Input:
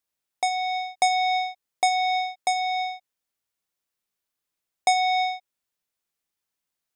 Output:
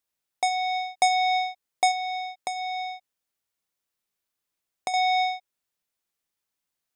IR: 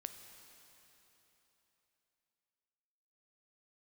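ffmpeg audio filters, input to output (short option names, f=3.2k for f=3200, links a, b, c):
-filter_complex "[0:a]asettb=1/sr,asplit=3[a][b][c];[a]atrim=end=1.914[d];[b]atrim=start=1.91:end=4.94,asetpts=PTS-STARTPTS,afade=t=in:d=0.004:c=qsin,afade=t=out:st=3.026:d=0.004:c=qsin,acompressor=threshold=-29dB:ratio=6[e];[c]atrim=start=4.936[f];[d][e]acrossfade=d=0.004:c1=hsin:c2=qsin[g];[g][f]acrossfade=d=0.004:c1=qsin:c2=hsin"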